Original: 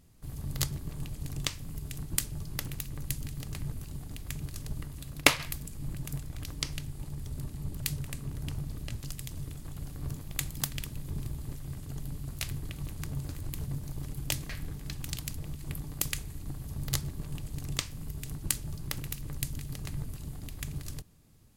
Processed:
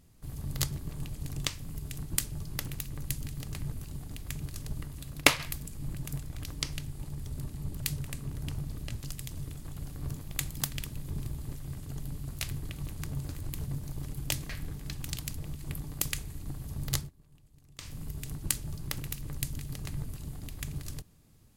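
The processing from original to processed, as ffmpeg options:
-filter_complex "[0:a]asplit=3[s0][s1][s2];[s0]atrim=end=17.1,asetpts=PTS-STARTPTS,afade=t=out:st=16.96:d=0.14:c=qsin:silence=0.0794328[s3];[s1]atrim=start=17.1:end=17.78,asetpts=PTS-STARTPTS,volume=0.0794[s4];[s2]atrim=start=17.78,asetpts=PTS-STARTPTS,afade=t=in:d=0.14:c=qsin:silence=0.0794328[s5];[s3][s4][s5]concat=n=3:v=0:a=1"

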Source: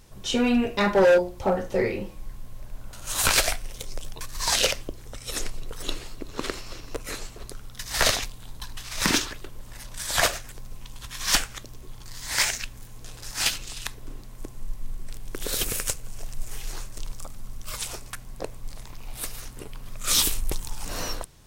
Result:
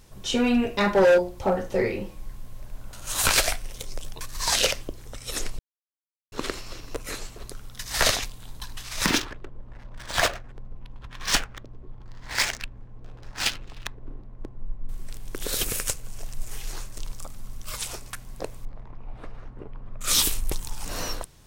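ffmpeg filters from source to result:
-filter_complex "[0:a]asettb=1/sr,asplit=3[s0][s1][s2];[s0]atrim=end=9.064[s3];[s1]atrim=start=9.06:end=14.89,asetpts=PTS-STARTPTS,afade=t=in:d=0.004:c=qsin,afade=t=out:st=5.826:d=0.004:c=qsin,adynamicsmooth=sensitivity=5:basefreq=940[s4];[s2]atrim=start=14.886[s5];[s3][s4]acrossfade=d=0.004:c1=hsin:c2=qsin[s6];[s6][s5]acrossfade=d=0.004:c1=qsin:c2=hsin,asettb=1/sr,asplit=3[s7][s8][s9];[s7]atrim=end=18.654[s10];[s8]atrim=start=18.65:end=20.01,asetpts=PTS-STARTPTS,afade=t=in:d=0.004:c=qsin,afade=t=out:st=1.356:d=0.004:c=qsin,lowpass=1200[s11];[s9]atrim=start=20.006[s12];[s10][s11]acrossfade=d=0.004:c1=hsin:c2=qsin[s13];[s13][s12]acrossfade=d=0.004:c1=qsin:c2=hsin,asplit=3[s14][s15][s16];[s14]atrim=end=5.59,asetpts=PTS-STARTPTS,afade=t=out:st=5.586:d=0.004:c=hsin[s17];[s15]atrim=start=5.59:end=6.32,asetpts=PTS-STARTPTS,volume=0[s18];[s16]atrim=start=6.32,asetpts=PTS-STARTPTS,afade=t=in:d=0.004:c=hsin[s19];[s17][s18][s19]concat=n=3:v=0:a=1"

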